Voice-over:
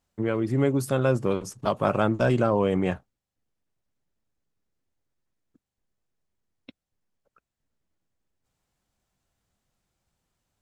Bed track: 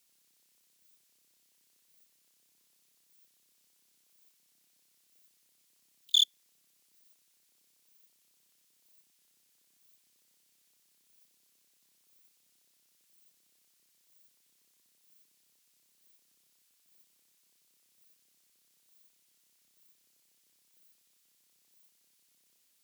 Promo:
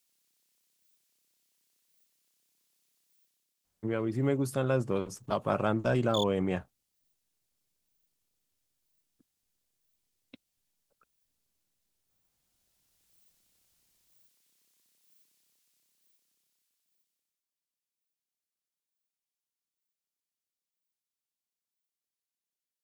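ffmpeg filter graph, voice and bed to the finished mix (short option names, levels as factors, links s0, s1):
-filter_complex "[0:a]adelay=3650,volume=0.531[s0];[1:a]volume=2,afade=t=out:st=3.12:d=0.43:silence=0.421697,afade=t=in:st=12.23:d=0.92:silence=0.298538,afade=t=out:st=15.27:d=2.18:silence=0.0794328[s1];[s0][s1]amix=inputs=2:normalize=0"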